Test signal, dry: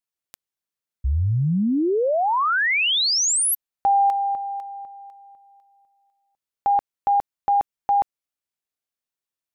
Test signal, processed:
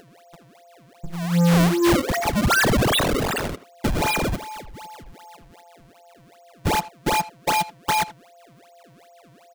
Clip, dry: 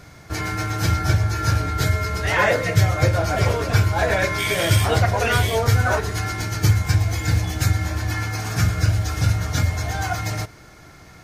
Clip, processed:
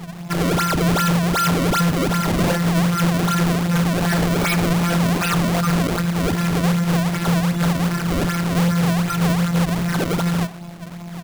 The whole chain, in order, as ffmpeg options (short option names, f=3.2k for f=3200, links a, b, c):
-filter_complex "[0:a]tiltshelf=f=1.5k:g=7,aecho=1:1:5:0.66,adynamicequalizer=threshold=0.0355:dfrequency=1100:dqfactor=1.2:tfrequency=1100:tqfactor=1.2:attack=5:release=100:ratio=0.375:range=1.5:mode=cutabove:tftype=bell,acrossover=split=340|1800[a][b][c];[b]acompressor=threshold=-40dB:ratio=1.5:knee=2.83:detection=peak[d];[a][d][c]amix=inputs=3:normalize=0,aeval=exprs='val(0)+0.00891*sin(2*PI*610*n/s)':c=same,acrossover=split=310|1100|2600[e][f][g][h];[f]aeval=exprs='0.224*(cos(1*acos(clip(val(0)/0.224,-1,1)))-cos(1*PI/2))+0.1*(cos(3*acos(clip(val(0)/0.224,-1,1)))-cos(3*PI/2))':c=same[i];[g]acrusher=bits=5:mix=0:aa=0.000001[j];[e][i][j][h]amix=inputs=4:normalize=0,afftfilt=real='hypot(re,im)*cos(PI*b)':imag='0':win_size=1024:overlap=0.75,asplit=2[k][l];[l]highpass=f=720:p=1,volume=30dB,asoftclip=type=tanh:threshold=-2dB[m];[k][m]amix=inputs=2:normalize=0,lowpass=f=1.2k:p=1,volume=-6dB,acrusher=samples=30:mix=1:aa=0.000001:lfo=1:lforange=48:lforate=2.6,asoftclip=type=tanh:threshold=-16dB,asplit=2[n][o];[o]adelay=80,highpass=300,lowpass=3.4k,asoftclip=type=hard:threshold=-25.5dB,volume=-12dB[p];[n][p]amix=inputs=2:normalize=0,volume=1.5dB"